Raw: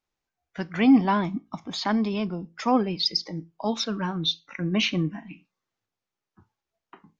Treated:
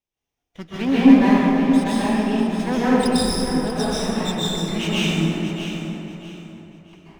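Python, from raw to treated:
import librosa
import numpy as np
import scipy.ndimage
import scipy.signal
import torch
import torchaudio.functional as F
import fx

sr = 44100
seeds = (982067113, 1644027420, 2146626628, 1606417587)

p1 = fx.lower_of_two(x, sr, delay_ms=0.33)
p2 = p1 + fx.echo_feedback(p1, sr, ms=639, feedback_pct=27, wet_db=-9.5, dry=0)
p3 = fx.rev_plate(p2, sr, seeds[0], rt60_s=3.1, hf_ratio=0.45, predelay_ms=115, drr_db=-10.0)
y = p3 * librosa.db_to_amplitude(-4.5)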